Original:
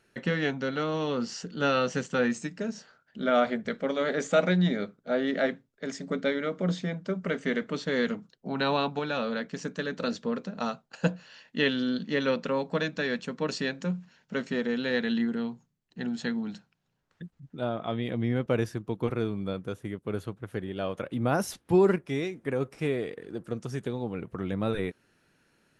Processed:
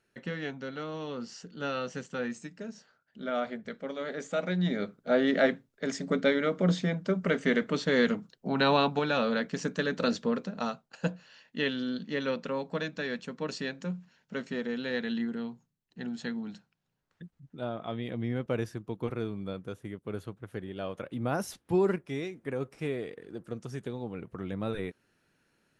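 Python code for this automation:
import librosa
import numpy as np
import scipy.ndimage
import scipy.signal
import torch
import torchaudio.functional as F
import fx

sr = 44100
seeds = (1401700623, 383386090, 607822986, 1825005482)

y = fx.gain(x, sr, db=fx.line((4.43, -8.0), (4.97, 2.5), (10.17, 2.5), (11.02, -4.5)))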